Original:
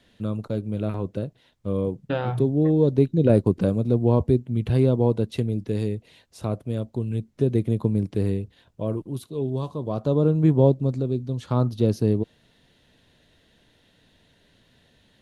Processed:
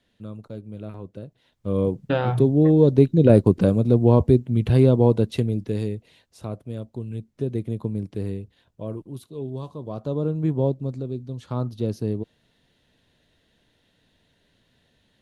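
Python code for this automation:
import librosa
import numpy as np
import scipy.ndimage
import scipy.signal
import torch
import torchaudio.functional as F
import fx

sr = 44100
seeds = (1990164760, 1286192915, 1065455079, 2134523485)

y = fx.gain(x, sr, db=fx.line((1.2, -9.0), (1.82, 3.5), (5.22, 3.5), (6.47, -5.0)))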